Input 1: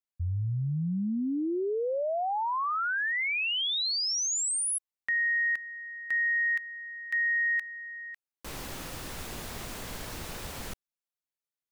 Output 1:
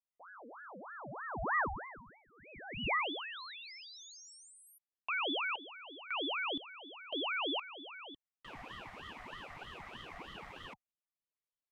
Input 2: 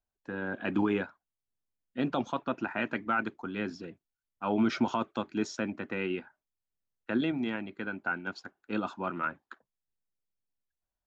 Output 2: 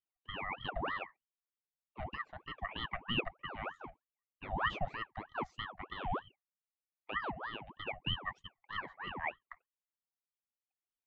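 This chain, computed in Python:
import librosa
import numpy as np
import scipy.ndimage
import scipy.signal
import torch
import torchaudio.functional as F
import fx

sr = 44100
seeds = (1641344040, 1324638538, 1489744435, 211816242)

y = fx.double_bandpass(x, sr, hz=750.0, octaves=2.1)
y = fx.rider(y, sr, range_db=4, speed_s=2.0)
y = fx.ring_lfo(y, sr, carrier_hz=970.0, swing_pct=65, hz=3.2)
y = y * 10.0 ** (2.5 / 20.0)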